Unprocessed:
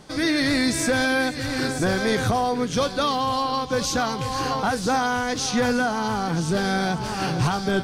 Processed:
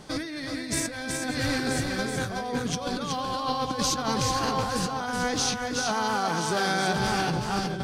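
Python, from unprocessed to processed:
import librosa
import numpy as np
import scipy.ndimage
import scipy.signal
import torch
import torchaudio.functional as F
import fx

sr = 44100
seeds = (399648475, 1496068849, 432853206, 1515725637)

y = fx.highpass(x, sr, hz=500.0, slope=6, at=(5.76, 6.93))
y = fx.over_compress(y, sr, threshold_db=-26.0, ratio=-0.5)
y = y + 10.0 ** (-4.5 / 20.0) * np.pad(y, (int(373 * sr / 1000.0), 0))[:len(y)]
y = y * librosa.db_to_amplitude(-2.5)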